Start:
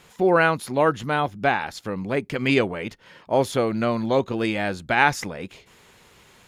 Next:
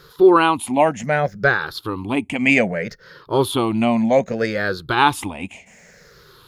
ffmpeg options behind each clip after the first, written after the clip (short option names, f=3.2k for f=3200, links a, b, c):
-af "afftfilt=real='re*pow(10,17/40*sin(2*PI*(0.59*log(max(b,1)*sr/1024/100)/log(2)-(-0.64)*(pts-256)/sr)))':imag='im*pow(10,17/40*sin(2*PI*(0.59*log(max(b,1)*sr/1024/100)/log(2)-(-0.64)*(pts-256)/sr)))':win_size=1024:overlap=0.75,volume=1.5dB"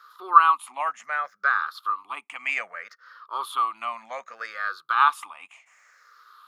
-af "highpass=f=1.2k:t=q:w=11,volume=-12.5dB"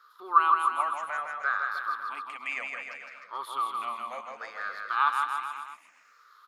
-filter_complex "[0:a]lowshelf=f=270:g=10,asplit=2[a][b];[b]aecho=0:1:160|304|433.6|550.2|655.2:0.631|0.398|0.251|0.158|0.1[c];[a][c]amix=inputs=2:normalize=0,volume=-7dB"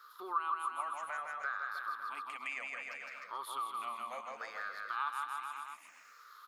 -af "highshelf=f=8.2k:g=9,acompressor=threshold=-45dB:ratio=2,volume=1dB"